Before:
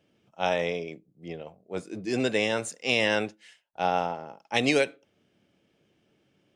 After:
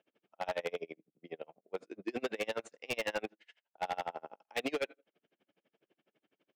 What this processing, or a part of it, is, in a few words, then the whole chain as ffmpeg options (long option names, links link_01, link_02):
helicopter radio: -filter_complex "[0:a]asettb=1/sr,asplit=3[link_01][link_02][link_03];[link_01]atrim=end=3.834[link_04];[link_02]atrim=start=3.83:end=4.43,asetpts=PTS-STARTPTS,afade=type=in:duration=0.004:curve=qsin,afade=type=out:start_time=0.596:duration=0.004:curve=qsin,equalizer=frequency=3700:width=1.3:gain=4.5[link_05];[link_03]atrim=start=4.426[link_06];[link_04][link_05]acrossfade=duration=0.004:curve1=hsin:curve2=qsin[link_07];[link_07][link_06]acrossfade=duration=0.004:curve1=qsin:curve2=hsin,highpass=320,lowpass=3000,aeval=exprs='val(0)*pow(10,-34*(0.5-0.5*cos(2*PI*12*n/s))/20)':channel_layout=same,asoftclip=type=hard:threshold=-29.5dB,volume=1dB"